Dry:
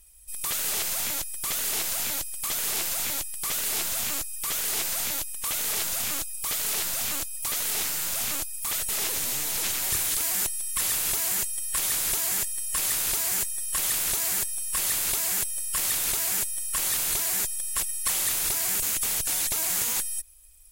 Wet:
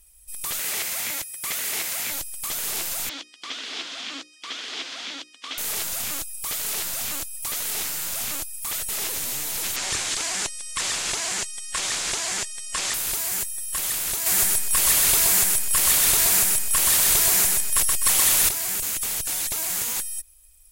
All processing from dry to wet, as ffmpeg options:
ffmpeg -i in.wav -filter_complex "[0:a]asettb=1/sr,asplit=3[link_01][link_02][link_03];[link_01]atrim=end=0.594[link_04];[link_02]atrim=start=0.59:end=2.12,asetpts=PTS-STARTPTS,afade=type=in:duration=0.004:curve=qsin,afade=type=out:start_time=1.526:duration=0.004:curve=qsin,highpass=frequency=120:poles=1,equalizer=frequency=2100:width=2.5:gain=6.5[link_05];[link_03]atrim=start=2.116[link_06];[link_04][link_05]acrossfade=duration=0.004:curve1=hsin:curve2=qsin[link_07];[link_07][link_06]acrossfade=duration=0.004:curve1=qsin:curve2=hsin,asettb=1/sr,asplit=3[link_08][link_09][link_10];[link_08]atrim=end=3.094[link_11];[link_09]atrim=start=3.09:end=5.58,asetpts=PTS-STARTPTS,afade=type=in:duration=0.004:curve=qsin,afade=type=out:start_time=2.486:duration=0.004:curve=qsin,highpass=frequency=260:width=0.5412,highpass=frequency=260:width=1.3066,equalizer=frequency=270:width_type=q:width=4:gain=9,equalizer=frequency=380:width_type=q:width=4:gain=-4,equalizer=frequency=590:width_type=q:width=4:gain=-5,equalizer=frequency=870:width_type=q:width=4:gain=-5,equalizer=frequency=3300:width_type=q:width=4:gain=6,lowpass=frequency=5100:width=0.5412,lowpass=frequency=5100:width=1.3066,bandreject=frequency=60:width_type=h:width=6,bandreject=frequency=120:width_type=h:width=6,bandreject=frequency=180:width_type=h:width=6,bandreject=frequency=240:width_type=h:width=6,bandreject=frequency=300:width_type=h:width=6,bandreject=frequency=360:width_type=h:width=6,bandreject=frequency=420:width_type=h:width=6,bandreject=frequency=480:width_type=h:width=6,bandreject=frequency=540:width_type=h:width=6[link_12];[link_10]atrim=start=5.576[link_13];[link_11][link_12]acrossfade=duration=0.004:curve1=hsin:curve2=qsin[link_14];[link_14][link_13]acrossfade=duration=0.004:curve1=qsin:curve2=hsin,asettb=1/sr,asplit=3[link_15][link_16][link_17];[link_15]atrim=end=9.764[link_18];[link_16]atrim=start=9.76:end=12.94,asetpts=PTS-STARTPTS,afade=type=in:duration=0.004:curve=qsin,afade=type=out:start_time=3.176:duration=0.004:curve=qsin,lowpass=frequency=7600:width=0.5412,lowpass=frequency=7600:width=1.3066,lowshelf=frequency=170:gain=-8.5,acontrast=36[link_19];[link_17]atrim=start=12.936[link_20];[link_18][link_19]acrossfade=duration=0.004:curve1=hsin:curve2=qsin[link_21];[link_21][link_20]acrossfade=duration=0.004:curve1=qsin:curve2=hsin,asettb=1/sr,asplit=3[link_22][link_23][link_24];[link_22]atrim=end=14.264[link_25];[link_23]atrim=start=14.26:end=18.49,asetpts=PTS-STARTPTS,afade=type=in:duration=0.004:curve=qsin,afade=type=out:start_time=4.226:duration=0.004:curve=qsin,acontrast=53,aecho=1:1:126|252|378|504:0.708|0.227|0.0725|0.0232,atrim=end_sample=186543[link_26];[link_24]atrim=start=18.486[link_27];[link_25][link_26]acrossfade=duration=0.004:curve1=hsin:curve2=qsin[link_28];[link_28][link_27]acrossfade=duration=0.004:curve1=qsin:curve2=hsin" out.wav

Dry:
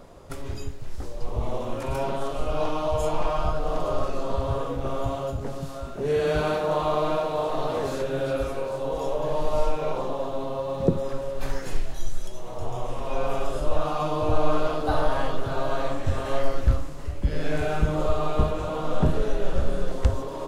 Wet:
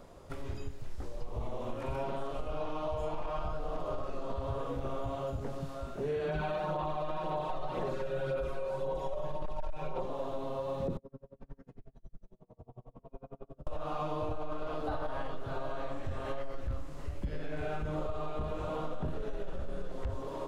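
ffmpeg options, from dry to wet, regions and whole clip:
ffmpeg -i in.wav -filter_complex "[0:a]asettb=1/sr,asplit=3[link_01][link_02][link_03];[link_01]atrim=end=6.284[link_04];[link_02]atrim=start=6.28:end=10.06,asetpts=PTS-STARTPTS,afade=type=in:duration=0.004:curve=qsin,afade=type=out:start_time=3.776:duration=0.004:curve=qsin,aphaser=in_gain=1:out_gain=1:delay=1.7:decay=0.39:speed=1.9:type=sinusoidal,aecho=1:1:5.4:0.69,atrim=end_sample=166698,volume=8dB,asoftclip=hard,volume=-8dB[link_05];[link_03]atrim=start=10.056[link_06];[link_04][link_05]acrossfade=duration=0.004:curve1=hsin:curve2=qsin[link_07];[link_07][link_06]acrossfade=duration=0.004:curve1=qsin:curve2=hsin,asettb=1/sr,asplit=3[link_08][link_09][link_10];[link_08]atrim=end=10.974[link_11];[link_09]atrim=start=10.97:end=13.67,asetpts=PTS-STARTPTS,afade=type=in:duration=0.004:curve=qsin,afade=type=out:start_time=2.696:duration=0.004:curve=qsin,bandpass=frequency=130:width_type=q:width=0.79,aecho=1:1:4.4:0.39,atrim=end_sample=119070,aeval=exprs='val(0)*pow(10,-35*(0.5-0.5*cos(2*PI*11*n/s))/20)':channel_layout=same[link_12];[link_10]atrim=start=13.666[link_13];[link_11][link_12]acrossfade=duration=0.004:curve1=hsin:curve2=qsin[link_14];[link_14][link_13]acrossfade=duration=0.004:curve1=qsin:curve2=hsin,acrossover=split=3700[link_15][link_16];[link_16]acompressor=threshold=-56dB:ratio=4:attack=1:release=60[link_17];[link_15][link_17]amix=inputs=2:normalize=0,alimiter=limit=-15.5dB:level=0:latency=1:release=12,acompressor=threshold=-25dB:ratio=6,volume=-5.5dB" out.wav

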